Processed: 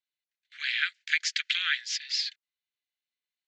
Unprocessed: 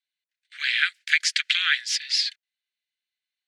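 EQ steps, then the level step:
elliptic low-pass filter 7,100 Hz, stop band 60 dB
−5.5 dB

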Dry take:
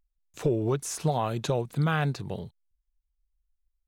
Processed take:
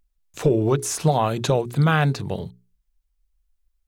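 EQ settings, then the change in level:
mains-hum notches 60/120/180/240/300/360/420 Hz
+7.5 dB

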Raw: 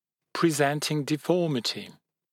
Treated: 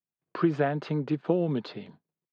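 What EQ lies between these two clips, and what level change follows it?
high-frequency loss of the air 120 metres
head-to-tape spacing loss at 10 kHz 31 dB
notch filter 2,000 Hz, Q 23
0.0 dB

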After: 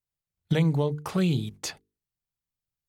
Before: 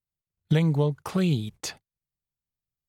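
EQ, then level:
mains-hum notches 50/100/150/200/250/300/350/400/450 Hz
0.0 dB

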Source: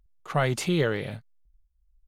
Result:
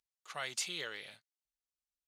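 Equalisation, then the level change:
resonant band-pass 5,900 Hz, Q 0.84
−1.0 dB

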